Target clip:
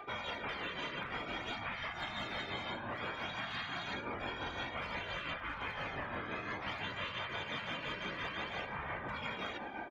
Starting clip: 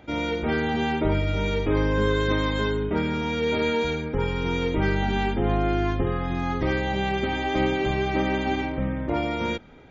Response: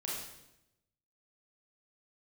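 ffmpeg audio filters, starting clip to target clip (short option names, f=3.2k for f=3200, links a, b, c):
-filter_complex "[0:a]aeval=exprs='clip(val(0),-1,0.133)':c=same,afftfilt=real='hypot(re,im)*cos(2*PI*random(0))':imag='hypot(re,im)*sin(2*PI*random(1))':win_size=512:overlap=0.75,flanger=delay=2.6:depth=7.4:regen=-10:speed=0.22:shape=sinusoidal,aeval=exprs='val(0)+0.000891*sin(2*PI*1200*n/s)':c=same,bandpass=f=1.3k:t=q:w=0.65:csg=0,asplit=2[a][b];[b]adelay=1152,lowpass=f=1.3k:p=1,volume=-10.5dB,asplit=2[c][d];[d]adelay=1152,lowpass=f=1.3k:p=1,volume=0.33,asplit=2[e][f];[f]adelay=1152,lowpass=f=1.3k:p=1,volume=0.33,asplit=2[g][h];[h]adelay=1152,lowpass=f=1.3k:p=1,volume=0.33[i];[c][e][g][i]amix=inputs=4:normalize=0[j];[a][j]amix=inputs=2:normalize=0,aphaser=in_gain=1:out_gain=1:delay=1.3:decay=0.41:speed=0.56:type=sinusoidal,afftfilt=real='re*lt(hypot(re,im),0.0251)':imag='im*lt(hypot(re,im),0.0251)':win_size=1024:overlap=0.75,tremolo=f=5.8:d=0.51,acompressor=threshold=-48dB:ratio=6,volume=11.5dB"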